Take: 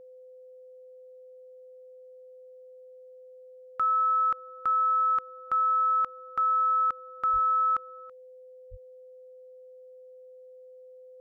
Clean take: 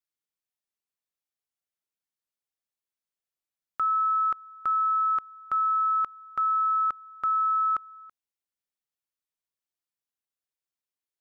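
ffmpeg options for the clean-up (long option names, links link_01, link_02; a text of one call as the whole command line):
ffmpeg -i in.wav -filter_complex "[0:a]bandreject=frequency=510:width=30,asplit=3[link_01][link_02][link_03];[link_01]afade=type=out:start_time=7.32:duration=0.02[link_04];[link_02]highpass=frequency=140:width=0.5412,highpass=frequency=140:width=1.3066,afade=type=in:start_time=7.32:duration=0.02,afade=type=out:start_time=7.44:duration=0.02[link_05];[link_03]afade=type=in:start_time=7.44:duration=0.02[link_06];[link_04][link_05][link_06]amix=inputs=3:normalize=0,asplit=3[link_07][link_08][link_09];[link_07]afade=type=out:start_time=8.7:duration=0.02[link_10];[link_08]highpass=frequency=140:width=0.5412,highpass=frequency=140:width=1.3066,afade=type=in:start_time=8.7:duration=0.02,afade=type=out:start_time=8.82:duration=0.02[link_11];[link_09]afade=type=in:start_time=8.82:duration=0.02[link_12];[link_10][link_11][link_12]amix=inputs=3:normalize=0" out.wav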